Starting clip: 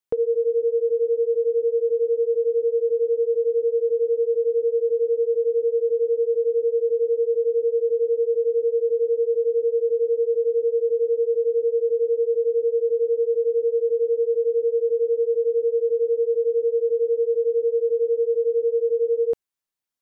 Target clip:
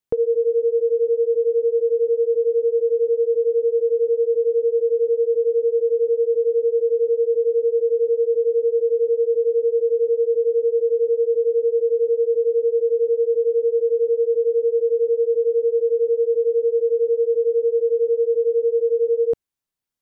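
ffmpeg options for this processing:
-af "lowshelf=f=290:g=8"

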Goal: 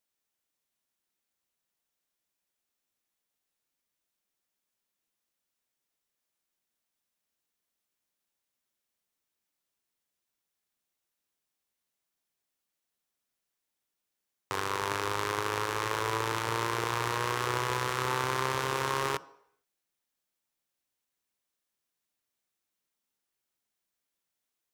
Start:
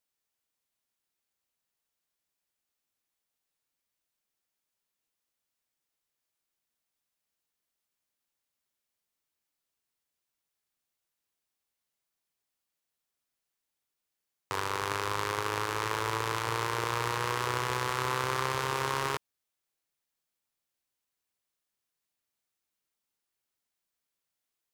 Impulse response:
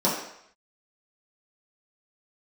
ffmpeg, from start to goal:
-filter_complex "[0:a]asplit=2[a][b];[1:a]atrim=start_sample=2205,lowshelf=f=170:g=9[c];[b][c]afir=irnorm=-1:irlink=0,volume=-30dB[d];[a][d]amix=inputs=2:normalize=0"

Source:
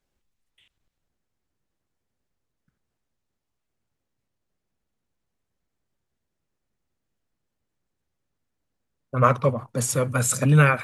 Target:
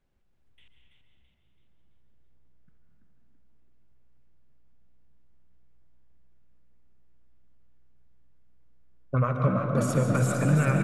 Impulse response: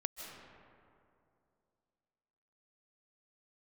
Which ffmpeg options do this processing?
-filter_complex "[0:a]acompressor=threshold=-25dB:ratio=12,bass=f=250:g=5,treble=f=4k:g=-10,asplit=6[a][b][c][d][e][f];[b]adelay=332,afreqshift=62,volume=-6dB[g];[c]adelay=664,afreqshift=124,volume=-12.9dB[h];[d]adelay=996,afreqshift=186,volume=-19.9dB[i];[e]adelay=1328,afreqshift=248,volume=-26.8dB[j];[f]adelay=1660,afreqshift=310,volume=-33.7dB[k];[a][g][h][i][j][k]amix=inputs=6:normalize=0[l];[1:a]atrim=start_sample=2205,asetrate=48510,aresample=44100[m];[l][m]afir=irnorm=-1:irlink=0,volume=3.5dB"

